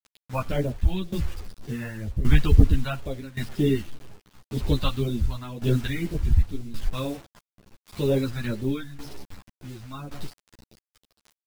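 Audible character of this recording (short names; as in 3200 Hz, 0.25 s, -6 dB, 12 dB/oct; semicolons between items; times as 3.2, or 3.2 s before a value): phasing stages 2, 2 Hz, lowest notch 380–1400 Hz; a quantiser's noise floor 8-bit, dither none; tremolo saw down 0.89 Hz, depth 85%; a shimmering, thickened sound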